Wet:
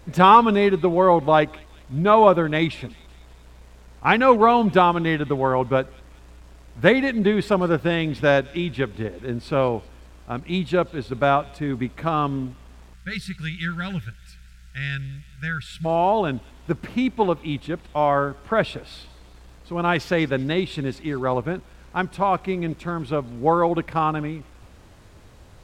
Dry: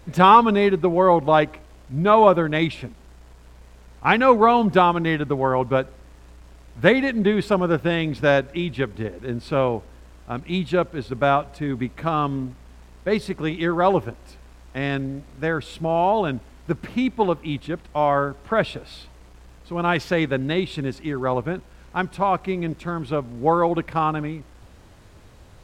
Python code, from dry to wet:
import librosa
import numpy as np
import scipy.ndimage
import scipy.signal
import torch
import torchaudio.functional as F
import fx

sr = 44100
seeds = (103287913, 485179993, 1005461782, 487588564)

y = fx.spec_box(x, sr, start_s=12.94, length_s=2.91, low_hz=200.0, high_hz=1300.0, gain_db=-23)
y = fx.echo_wet_highpass(y, sr, ms=194, feedback_pct=56, hz=3300.0, wet_db=-16)